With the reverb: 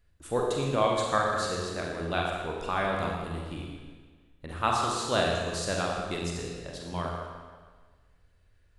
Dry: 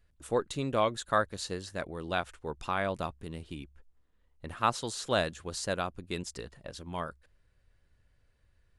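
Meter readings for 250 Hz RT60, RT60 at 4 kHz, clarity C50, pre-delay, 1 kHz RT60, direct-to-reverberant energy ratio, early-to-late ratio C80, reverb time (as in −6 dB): 1.5 s, 1.4 s, 1.0 dB, 35 ms, 1.5 s, −1.5 dB, 2.0 dB, 1.5 s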